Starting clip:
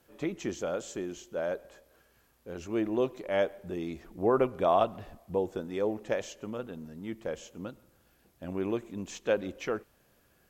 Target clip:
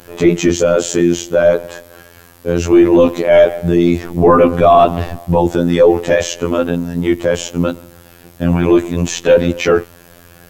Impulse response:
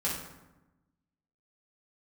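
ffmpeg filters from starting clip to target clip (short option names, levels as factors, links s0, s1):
-af "afftfilt=real='hypot(re,im)*cos(PI*b)':imag='0':win_size=2048:overlap=0.75,equalizer=f=120:t=o:w=0.43:g=8,apsyclip=29.9,volume=0.794"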